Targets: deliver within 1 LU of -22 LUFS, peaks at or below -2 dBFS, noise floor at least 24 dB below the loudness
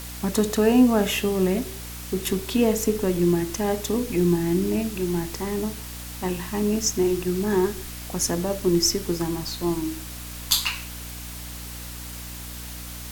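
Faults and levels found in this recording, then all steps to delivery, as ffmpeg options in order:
hum 60 Hz; harmonics up to 300 Hz; hum level -37 dBFS; noise floor -36 dBFS; noise floor target -48 dBFS; loudness -24.0 LUFS; peak -4.5 dBFS; loudness target -22.0 LUFS
-> -af "bandreject=f=60:t=h:w=4,bandreject=f=120:t=h:w=4,bandreject=f=180:t=h:w=4,bandreject=f=240:t=h:w=4,bandreject=f=300:t=h:w=4"
-af "afftdn=nr=12:nf=-36"
-af "volume=2dB"

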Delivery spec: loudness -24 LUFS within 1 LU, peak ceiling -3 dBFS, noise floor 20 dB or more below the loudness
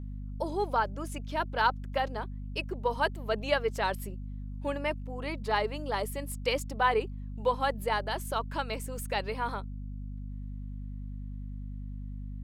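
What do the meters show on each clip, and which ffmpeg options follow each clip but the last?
hum 50 Hz; harmonics up to 250 Hz; hum level -36 dBFS; loudness -33.0 LUFS; peak -12.0 dBFS; loudness target -24.0 LUFS
-> -af "bandreject=f=50:t=h:w=6,bandreject=f=100:t=h:w=6,bandreject=f=150:t=h:w=6,bandreject=f=200:t=h:w=6,bandreject=f=250:t=h:w=6"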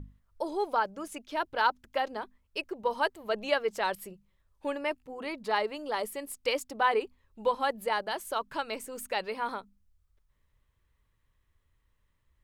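hum none; loudness -32.0 LUFS; peak -12.0 dBFS; loudness target -24.0 LUFS
-> -af "volume=8dB"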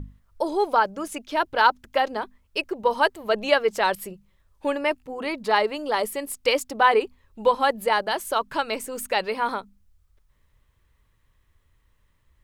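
loudness -24.0 LUFS; peak -4.0 dBFS; noise floor -65 dBFS

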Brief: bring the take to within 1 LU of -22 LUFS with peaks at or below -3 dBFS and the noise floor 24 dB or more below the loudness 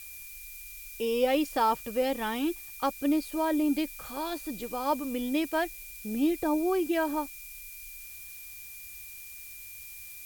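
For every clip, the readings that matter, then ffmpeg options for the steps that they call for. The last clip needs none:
steady tone 2400 Hz; tone level -49 dBFS; noise floor -45 dBFS; noise floor target -54 dBFS; loudness -29.5 LUFS; peak -14.5 dBFS; loudness target -22.0 LUFS
-> -af "bandreject=f=2.4k:w=30"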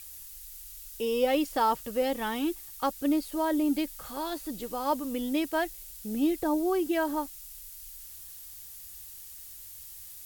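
steady tone none; noise floor -46 dBFS; noise floor target -54 dBFS
-> -af "afftdn=nr=8:nf=-46"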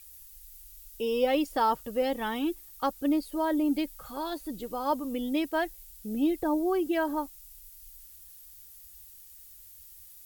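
noise floor -51 dBFS; noise floor target -54 dBFS
-> -af "afftdn=nr=6:nf=-51"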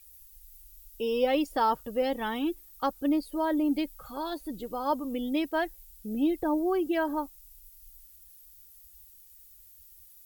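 noise floor -54 dBFS; loudness -30.0 LUFS; peak -14.5 dBFS; loudness target -22.0 LUFS
-> -af "volume=8dB"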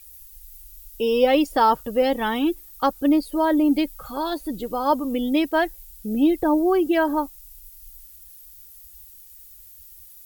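loudness -22.0 LUFS; peak -6.5 dBFS; noise floor -46 dBFS

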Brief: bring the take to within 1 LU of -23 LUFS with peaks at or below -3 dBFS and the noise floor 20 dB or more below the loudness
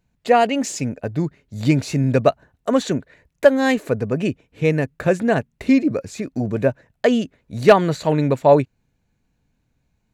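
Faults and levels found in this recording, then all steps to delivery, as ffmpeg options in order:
loudness -19.5 LUFS; peak -2.0 dBFS; loudness target -23.0 LUFS
-> -af "volume=-3.5dB"

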